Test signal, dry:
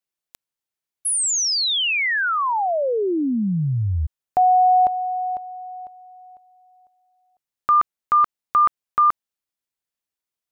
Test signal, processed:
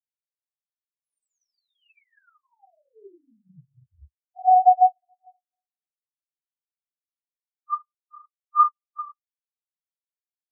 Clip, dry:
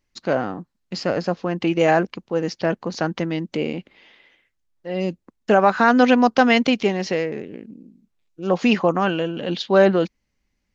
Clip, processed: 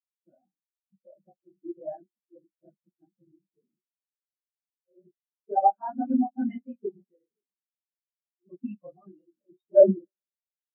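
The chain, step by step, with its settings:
random phases in long frames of 50 ms
notch filter 470 Hz, Q 12
coupled-rooms reverb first 0.42 s, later 4.3 s, from −18 dB, DRR 8 dB
hard clipping −5.5 dBFS
every bin expanded away from the loudest bin 4 to 1

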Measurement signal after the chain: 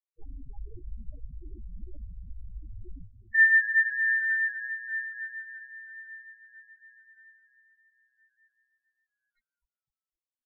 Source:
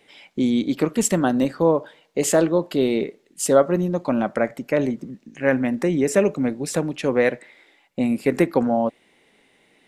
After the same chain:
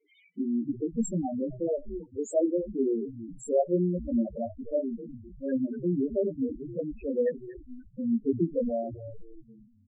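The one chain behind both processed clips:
echo with shifted repeats 256 ms, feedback 42%, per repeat −120 Hz, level −12 dB
multi-voice chorus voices 6, 0.22 Hz, delay 20 ms, depth 3 ms
spectral peaks only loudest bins 4
level −4 dB

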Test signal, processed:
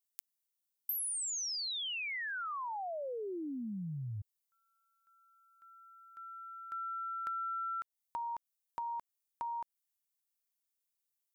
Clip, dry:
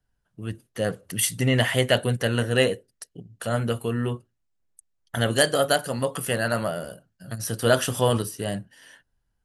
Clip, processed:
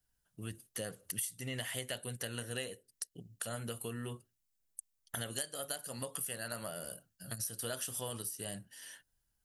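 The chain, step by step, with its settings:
first-order pre-emphasis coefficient 0.8
downward compressor 6 to 1, threshold −43 dBFS
level +5.5 dB

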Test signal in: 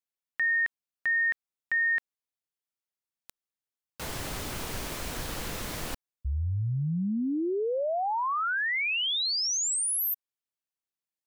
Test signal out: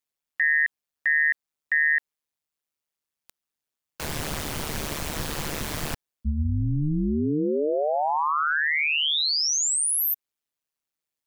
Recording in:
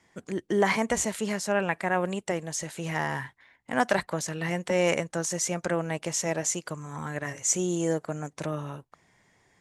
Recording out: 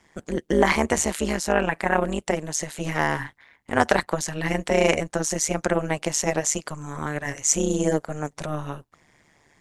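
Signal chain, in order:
amplitude modulation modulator 150 Hz, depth 85%
level +8.5 dB

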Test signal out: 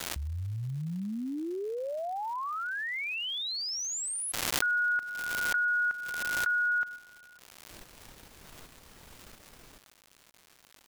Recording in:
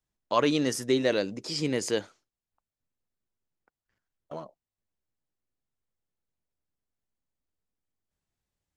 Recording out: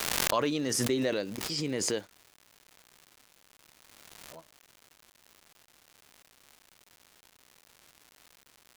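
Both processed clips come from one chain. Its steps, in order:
noise gate −35 dBFS, range −20 dB
surface crackle 280 per second −38 dBFS
background raised ahead of every attack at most 23 dB per second
level −5.5 dB

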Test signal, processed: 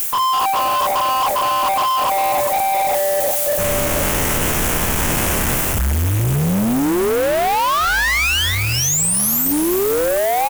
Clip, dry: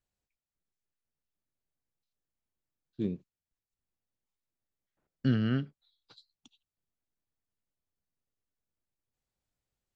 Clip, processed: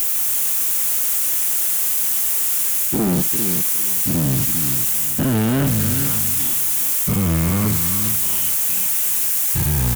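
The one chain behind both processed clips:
every bin's largest magnitude spread in time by 120 ms
background noise violet −42 dBFS
delay with pitch and tempo change per echo 154 ms, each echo −5 semitones, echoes 2, each echo −6 dB
reversed playback
downward compressor, threshold −34 dBFS
reversed playback
Butterworth band-reject 4,300 Hz, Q 1.6
repeating echo 399 ms, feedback 18%, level −10 dB
in parallel at −10 dB: fuzz pedal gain 51 dB, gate −54 dBFS
on the sum: level +5.5 dB

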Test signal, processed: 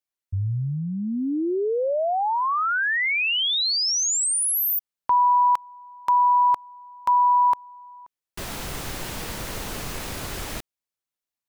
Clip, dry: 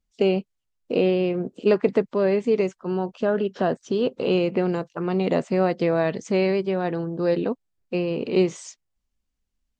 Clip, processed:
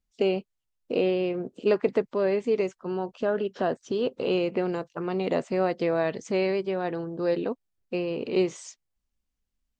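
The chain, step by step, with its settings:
dynamic equaliser 180 Hz, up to −5 dB, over −34 dBFS, Q 1.5
level −3 dB

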